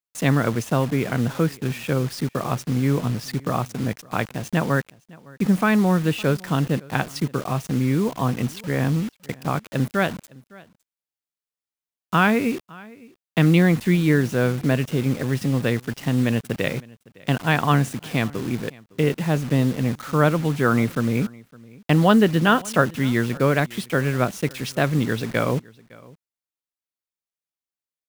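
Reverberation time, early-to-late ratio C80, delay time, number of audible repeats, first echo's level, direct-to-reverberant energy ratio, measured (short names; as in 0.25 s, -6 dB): none, none, 0.56 s, 1, -23.5 dB, none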